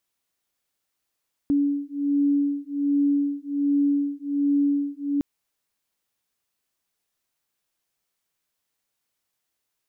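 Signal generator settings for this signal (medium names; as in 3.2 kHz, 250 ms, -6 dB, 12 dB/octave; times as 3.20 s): beating tones 284 Hz, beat 1.3 Hz, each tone -23 dBFS 3.71 s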